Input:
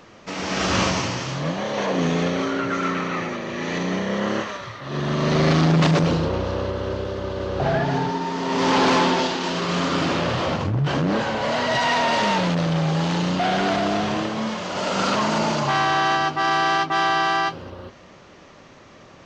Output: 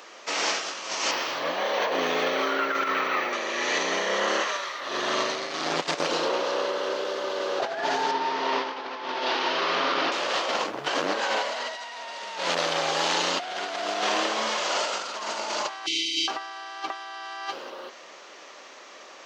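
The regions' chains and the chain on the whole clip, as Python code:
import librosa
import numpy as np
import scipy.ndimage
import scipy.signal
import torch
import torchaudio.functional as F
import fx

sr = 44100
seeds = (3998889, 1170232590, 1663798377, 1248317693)

y = fx.chain(x, sr, fx.air_absorb(metres=120.0),
    fx.notch(hz=6600.0, q=22.0),
    fx.resample_linear(factor=2), at=(1.11, 3.33))
y = fx.chain(y, sr, fx.cvsd(bps=32000),
    fx.air_absorb(metres=160.0), at=(8.11, 10.12))
y = fx.chain(y, sr, fx.brickwall_bandstop(low_hz=430.0, high_hz=2000.0),
    fx.comb(ms=6.4, depth=0.85), at=(15.86, 16.28))
y = scipy.signal.sosfilt(scipy.signal.bessel(4, 530.0, 'highpass', norm='mag', fs=sr, output='sos'), y)
y = fx.high_shelf(y, sr, hz=3900.0, db=6.5)
y = fx.over_compress(y, sr, threshold_db=-27.0, ratio=-0.5)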